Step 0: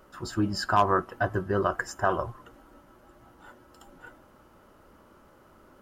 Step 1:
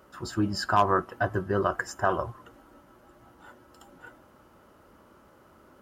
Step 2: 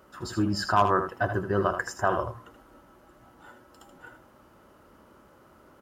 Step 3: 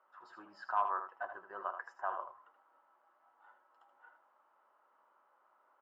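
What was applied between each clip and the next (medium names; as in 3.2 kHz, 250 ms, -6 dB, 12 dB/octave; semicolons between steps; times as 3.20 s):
high-pass 49 Hz
delay 79 ms -8.5 dB
ladder band-pass 1.1 kHz, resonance 40%; trim -2 dB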